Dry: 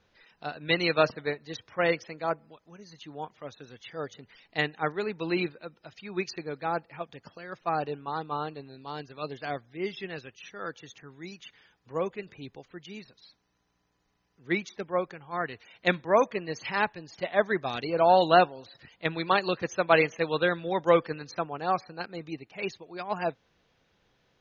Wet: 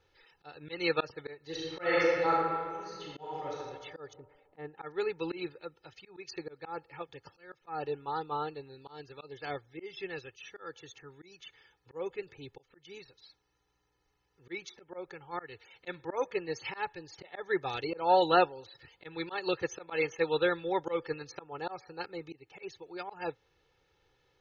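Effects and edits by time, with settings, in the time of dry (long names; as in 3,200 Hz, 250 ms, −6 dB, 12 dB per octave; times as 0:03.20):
0:01.43–0:03.54: thrown reverb, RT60 1.8 s, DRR −4.5 dB
0:04.13–0:04.78: low-pass filter 1,100 Hz
whole clip: comb filter 2.3 ms, depth 78%; volume swells 201 ms; level −4.5 dB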